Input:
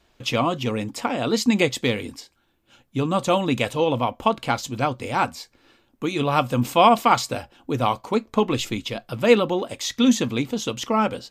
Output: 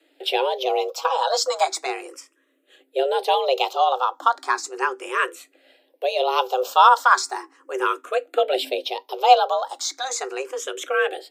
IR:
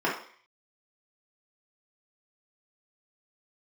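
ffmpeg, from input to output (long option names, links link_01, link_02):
-filter_complex "[0:a]afreqshift=260,asettb=1/sr,asplit=3[link_01][link_02][link_03];[link_01]atrim=end=0.694[link_04];[link_02]atrim=start=0.69:end=1.86,asetpts=PTS-STARTPTS,afade=type=in:duration=0.004:curve=qsin,afade=type=out:start_time=1.166:duration=0.004:curve=qsin,aecho=1:1:6.2:0.75,atrim=end_sample=51597[link_05];[link_03]atrim=start=1.856[link_06];[link_04][link_05]acrossfade=duration=0.004:curve1=hsin:curve2=qsin[link_07];[link_07][link_06]acrossfade=duration=0.004:curve1=qsin:curve2=hsin,asplit=2[link_08][link_09];[link_09]afreqshift=0.36[link_10];[link_08][link_10]amix=inputs=2:normalize=1,volume=2.5dB"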